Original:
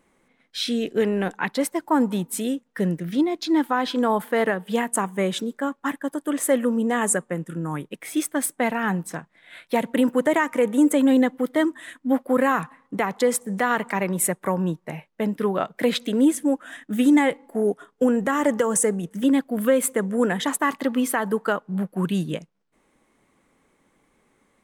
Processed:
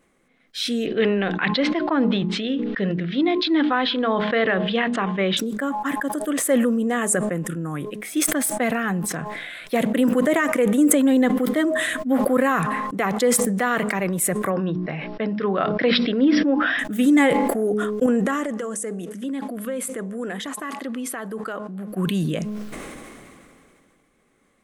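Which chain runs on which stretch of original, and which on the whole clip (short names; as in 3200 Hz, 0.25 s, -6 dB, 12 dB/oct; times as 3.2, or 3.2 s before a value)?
0.86–5.37 steep low-pass 3900 Hz + high shelf 2600 Hz +11.5 dB + notches 60/120/180/240/300/360/420/480 Hz
14.5–16.79 brick-wall FIR low-pass 5700 Hz + bell 1500 Hz +3.5 dB 1.6 oct + notches 60/120/180/240/300/360 Hz
18.06–21.9 brick-wall FIR band-pass 180–12000 Hz + compressor 2:1, threshold -33 dBFS
whole clip: notch 910 Hz, Q 5.7; de-hum 210.6 Hz, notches 5; sustainer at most 23 dB/s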